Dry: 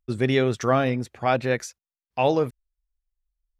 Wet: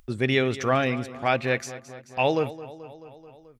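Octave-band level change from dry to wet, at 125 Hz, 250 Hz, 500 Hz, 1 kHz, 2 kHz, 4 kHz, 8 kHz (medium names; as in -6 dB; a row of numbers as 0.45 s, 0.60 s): -2.5 dB, -2.0 dB, -2.0 dB, -1.5 dB, +2.5 dB, +2.0 dB, -1.5 dB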